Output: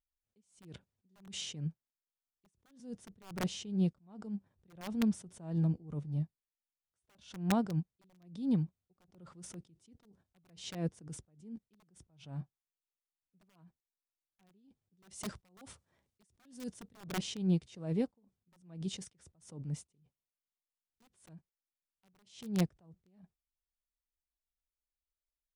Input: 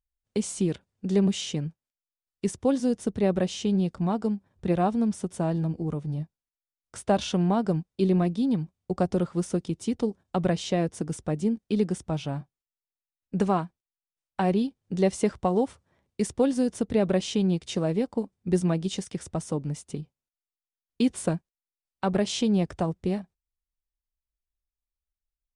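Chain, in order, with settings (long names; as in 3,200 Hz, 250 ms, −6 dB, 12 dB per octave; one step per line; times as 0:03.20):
0:15.11–0:17.01: high-shelf EQ 3,000 Hz +7.5 dB
wrap-around overflow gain 16 dB
dynamic equaliser 140 Hz, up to +6 dB, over −40 dBFS, Q 0.93
level that may rise only so fast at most 120 dB per second
level −7.5 dB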